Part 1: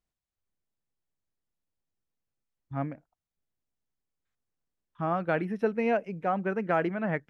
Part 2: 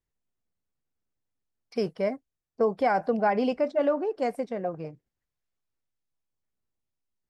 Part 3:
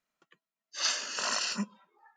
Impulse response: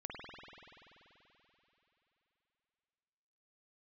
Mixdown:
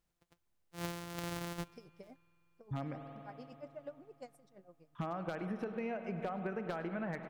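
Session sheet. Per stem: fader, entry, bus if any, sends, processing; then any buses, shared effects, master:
+1.0 dB, 0.00 s, send -5 dB, echo send -18.5 dB, compression 16:1, threshold -31 dBFS, peak gain reduction 11.5 dB; wavefolder -25.5 dBFS
-20.0 dB, 0.00 s, no send, no echo send, tone controls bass +1 dB, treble +10 dB; logarithmic tremolo 8.5 Hz, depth 20 dB; auto duck -7 dB, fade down 0.45 s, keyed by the first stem
-7.0 dB, 0.00 s, send -19 dB, no echo send, sorted samples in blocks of 256 samples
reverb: on, RT60 3.5 s, pre-delay 48 ms
echo: delay 103 ms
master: compression 6:1, threshold -36 dBFS, peak gain reduction 9 dB

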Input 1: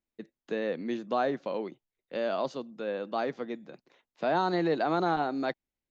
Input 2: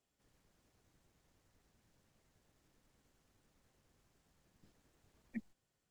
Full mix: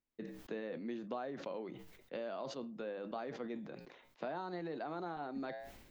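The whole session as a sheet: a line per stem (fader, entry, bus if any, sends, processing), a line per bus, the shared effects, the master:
+2.0 dB, 0.00 s, no send, compression 6:1, threshold -37 dBFS, peak gain reduction 13.5 dB
-4.5 dB, 0.00 s, no send, spectral contrast expander 1.5:1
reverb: none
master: peaking EQ 10 kHz -7 dB 1.9 oct; flange 0.65 Hz, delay 7.2 ms, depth 1.3 ms, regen -80%; decay stretcher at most 53 dB/s

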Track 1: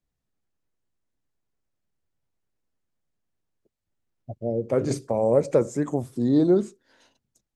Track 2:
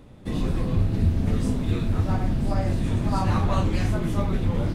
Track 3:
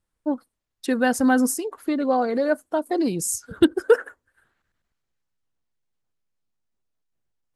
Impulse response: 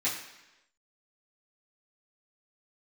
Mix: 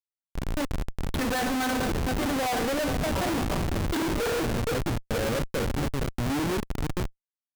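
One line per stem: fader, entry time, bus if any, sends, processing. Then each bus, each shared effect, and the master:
-11.5 dB, 0.00 s, no bus, send -14 dB, echo send -8 dB, tone controls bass +12 dB, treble -2 dB
-6.0 dB, 0.00 s, bus A, send -8.5 dB, echo send -12.5 dB, feedback comb 81 Hz, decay 0.96 s, harmonics all, mix 50%
+2.0 dB, 0.30 s, bus A, send -17.5 dB, echo send -19.5 dB, elliptic low-pass 3.6 kHz, stop band 40 dB; hum notches 50/100/150/200/250/300/350/400/450/500 Hz; three bands expanded up and down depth 100%; auto duck -23 dB, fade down 1.20 s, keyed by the first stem
bus A: 0.0 dB, compression, threshold -24 dBFS, peak gain reduction 14.5 dB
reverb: on, RT60 1.0 s, pre-delay 3 ms
echo: feedback delay 469 ms, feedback 55%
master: overdrive pedal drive 13 dB, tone 5.9 kHz, clips at -7 dBFS; Schmitt trigger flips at -27 dBFS

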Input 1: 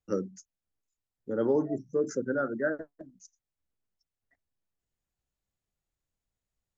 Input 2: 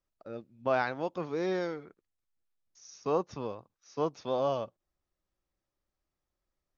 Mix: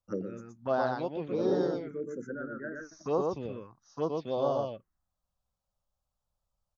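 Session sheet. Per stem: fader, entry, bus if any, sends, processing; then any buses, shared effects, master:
-0.5 dB, 0.00 s, no send, echo send -9 dB, auto duck -6 dB, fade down 0.45 s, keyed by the second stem
+0.5 dB, 0.00 s, no send, echo send -3 dB, none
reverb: none
echo: delay 120 ms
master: treble shelf 5.3 kHz -6.5 dB; touch-sensitive phaser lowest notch 340 Hz, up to 2.3 kHz, full sweep at -24.5 dBFS

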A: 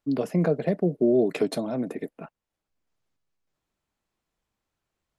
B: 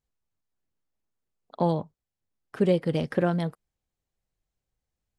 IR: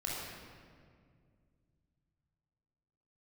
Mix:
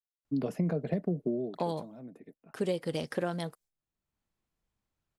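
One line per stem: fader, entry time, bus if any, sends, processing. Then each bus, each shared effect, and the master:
-6.0 dB, 0.25 s, no send, auto duck -15 dB, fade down 0.30 s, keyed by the second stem
-4.0 dB, 0.00 s, no send, expander -49 dBFS; tone controls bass -14 dB, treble +10 dB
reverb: none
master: tone controls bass +7 dB, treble 0 dB; compression, threshold -26 dBFS, peak gain reduction 6.5 dB

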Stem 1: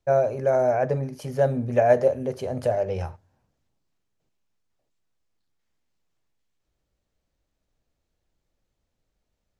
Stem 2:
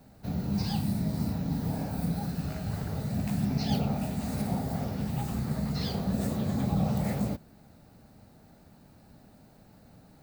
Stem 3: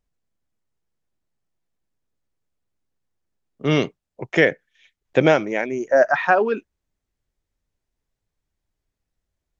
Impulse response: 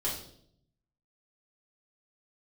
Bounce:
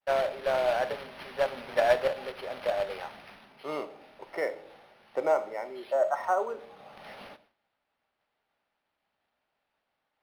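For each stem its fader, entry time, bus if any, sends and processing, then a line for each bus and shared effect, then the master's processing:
+1.0 dB, 0.00 s, send -17 dB, short-mantissa float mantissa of 2-bit
-1.5 dB, 0.00 s, send -19.5 dB, auto duck -13 dB, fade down 0.45 s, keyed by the third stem
-3.0 dB, 0.00 s, send -13 dB, Savitzky-Golay filter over 65 samples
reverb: on, RT60 0.65 s, pre-delay 3 ms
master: high-pass 910 Hz 12 dB/octave; expander -56 dBFS; decimation joined by straight lines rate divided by 6×

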